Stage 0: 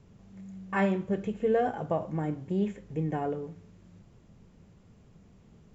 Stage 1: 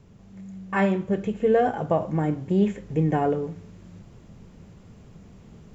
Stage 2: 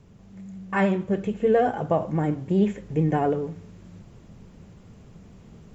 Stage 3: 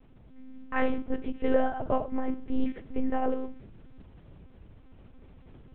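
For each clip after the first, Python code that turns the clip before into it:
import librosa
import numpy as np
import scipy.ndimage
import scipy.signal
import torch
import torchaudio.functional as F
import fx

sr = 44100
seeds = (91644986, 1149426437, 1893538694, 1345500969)

y1 = fx.rider(x, sr, range_db=10, speed_s=2.0)
y1 = F.gain(torch.from_numpy(y1), 6.5).numpy()
y2 = fx.vibrato(y1, sr, rate_hz=13.0, depth_cents=38.0)
y3 = fx.lpc_monotone(y2, sr, seeds[0], pitch_hz=260.0, order=8)
y3 = F.gain(torch.from_numpy(y3), -3.5).numpy()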